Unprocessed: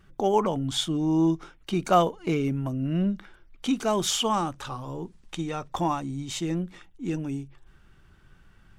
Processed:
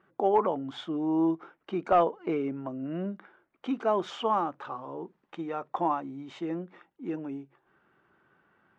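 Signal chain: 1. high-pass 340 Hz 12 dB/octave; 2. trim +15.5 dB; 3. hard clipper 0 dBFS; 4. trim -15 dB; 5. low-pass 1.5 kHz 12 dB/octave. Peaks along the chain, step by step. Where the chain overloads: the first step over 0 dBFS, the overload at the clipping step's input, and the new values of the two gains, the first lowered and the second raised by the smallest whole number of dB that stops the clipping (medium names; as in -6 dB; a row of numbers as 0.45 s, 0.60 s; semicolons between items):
-8.5 dBFS, +7.0 dBFS, 0.0 dBFS, -15.0 dBFS, -14.5 dBFS; step 2, 7.0 dB; step 2 +8.5 dB, step 4 -8 dB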